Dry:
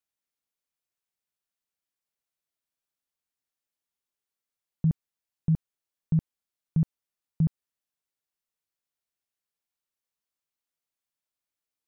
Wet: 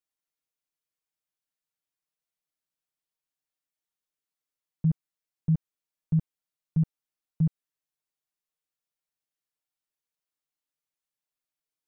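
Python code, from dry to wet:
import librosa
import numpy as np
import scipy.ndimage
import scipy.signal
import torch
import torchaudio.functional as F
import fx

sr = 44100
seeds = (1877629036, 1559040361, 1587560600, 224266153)

y = x + 0.91 * np.pad(x, (int(6.5 * sr / 1000.0), 0))[:len(x)]
y = y * 10.0 ** (-5.5 / 20.0)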